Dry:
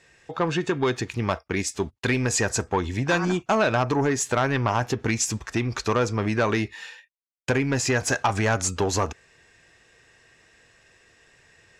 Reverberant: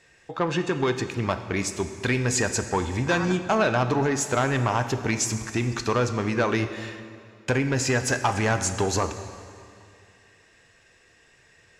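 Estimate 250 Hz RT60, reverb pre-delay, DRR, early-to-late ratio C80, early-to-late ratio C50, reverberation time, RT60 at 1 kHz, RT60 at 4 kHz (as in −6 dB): 2.5 s, 10 ms, 9.0 dB, 11.0 dB, 10.0 dB, 2.4 s, 2.3 s, 2.1 s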